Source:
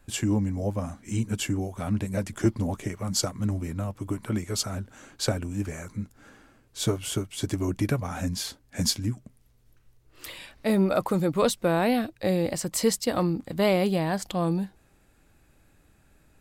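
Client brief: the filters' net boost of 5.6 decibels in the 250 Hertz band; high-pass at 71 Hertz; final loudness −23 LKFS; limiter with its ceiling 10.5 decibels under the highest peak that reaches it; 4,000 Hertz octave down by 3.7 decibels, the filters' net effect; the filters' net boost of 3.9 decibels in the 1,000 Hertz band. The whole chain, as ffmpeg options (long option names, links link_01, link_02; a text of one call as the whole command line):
ffmpeg -i in.wav -af "highpass=71,equalizer=frequency=250:width_type=o:gain=7.5,equalizer=frequency=1000:width_type=o:gain=5,equalizer=frequency=4000:width_type=o:gain=-5,volume=4.5dB,alimiter=limit=-12.5dB:level=0:latency=1" out.wav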